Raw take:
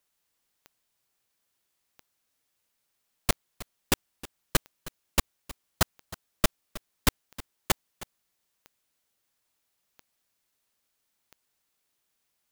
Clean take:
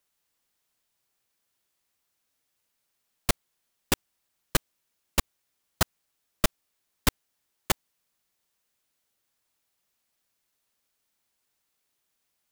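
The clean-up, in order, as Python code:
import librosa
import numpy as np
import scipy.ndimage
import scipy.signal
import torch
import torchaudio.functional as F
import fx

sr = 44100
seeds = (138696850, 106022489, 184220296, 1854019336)

y = fx.fix_declick_ar(x, sr, threshold=10.0)
y = fx.fix_echo_inverse(y, sr, delay_ms=315, level_db=-18.0)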